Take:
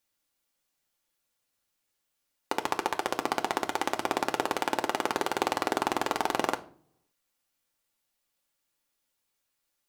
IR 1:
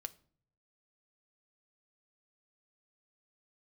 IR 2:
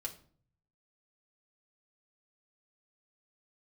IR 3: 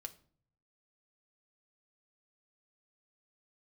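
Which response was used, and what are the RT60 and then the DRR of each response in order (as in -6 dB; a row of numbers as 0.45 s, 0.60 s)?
3; 0.50 s, 0.50 s, 0.50 s; 9.0 dB, -1.5 dB, 5.0 dB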